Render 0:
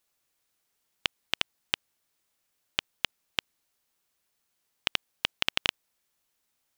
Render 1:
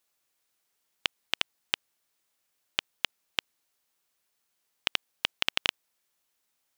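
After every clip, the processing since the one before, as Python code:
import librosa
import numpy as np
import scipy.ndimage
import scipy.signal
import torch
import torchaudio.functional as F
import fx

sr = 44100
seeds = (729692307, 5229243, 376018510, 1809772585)

y = fx.low_shelf(x, sr, hz=200.0, db=-6.5)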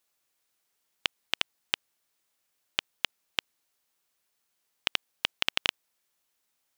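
y = x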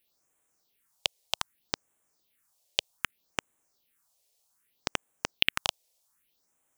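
y = fx.phaser_stages(x, sr, stages=4, low_hz=220.0, high_hz=4500.0, hz=0.64, feedback_pct=35)
y = F.gain(torch.from_numpy(y), 5.0).numpy()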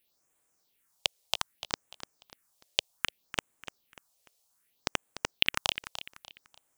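y = fx.echo_feedback(x, sr, ms=295, feedback_pct=34, wet_db=-12)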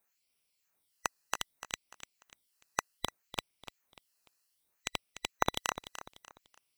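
y = fx.band_swap(x, sr, width_hz=2000)
y = F.gain(torch.from_numpy(y), -4.5).numpy()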